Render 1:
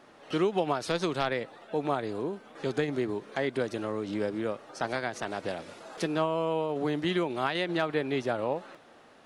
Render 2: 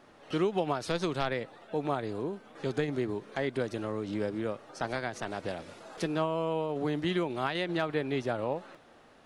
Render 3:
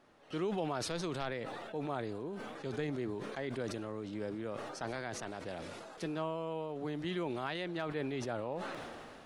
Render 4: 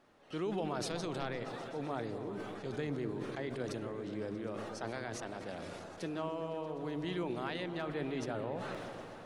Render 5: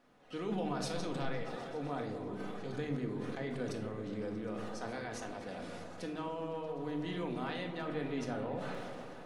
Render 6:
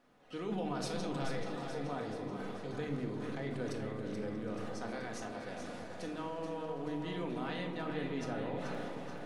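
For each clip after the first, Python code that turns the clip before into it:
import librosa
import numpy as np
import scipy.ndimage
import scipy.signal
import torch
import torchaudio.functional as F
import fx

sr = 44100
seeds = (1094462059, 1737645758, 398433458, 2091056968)

y1 = fx.low_shelf(x, sr, hz=90.0, db=11.5)
y1 = F.gain(torch.from_numpy(y1), -2.5).numpy()
y2 = fx.sustainer(y1, sr, db_per_s=24.0)
y2 = F.gain(torch.from_numpy(y2), -8.0).numpy()
y3 = fx.echo_opening(y2, sr, ms=127, hz=400, octaves=1, feedback_pct=70, wet_db=-6)
y3 = F.gain(torch.from_numpy(y3), -1.5).numpy()
y4 = fx.room_shoebox(y3, sr, seeds[0], volume_m3=1000.0, walls='furnished', distance_m=1.9)
y4 = F.gain(torch.from_numpy(y4), -2.5).numpy()
y5 = fx.echo_feedback(y4, sr, ms=431, feedback_pct=55, wet_db=-7.5)
y5 = F.gain(torch.from_numpy(y5), -1.0).numpy()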